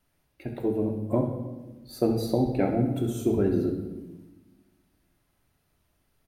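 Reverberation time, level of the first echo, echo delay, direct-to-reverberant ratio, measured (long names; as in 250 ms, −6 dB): 1.2 s, −11.0 dB, 66 ms, 1.5 dB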